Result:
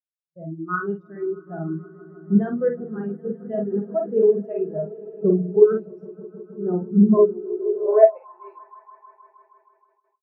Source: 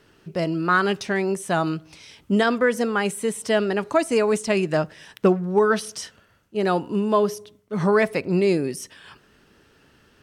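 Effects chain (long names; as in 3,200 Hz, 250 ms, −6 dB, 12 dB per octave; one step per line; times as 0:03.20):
adaptive Wiener filter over 9 samples
double-tracking delay 50 ms −2 dB
on a send: echo that builds up and dies away 157 ms, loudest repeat 5, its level −12 dB
on the sum: high-pass filter sweep 82 Hz → 900 Hz, 0:06.56–0:08.34
slap from a distant wall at 26 metres, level −22 dB
noise gate with hold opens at −19 dBFS
every bin expanded away from the loudest bin 2.5 to 1
level +1 dB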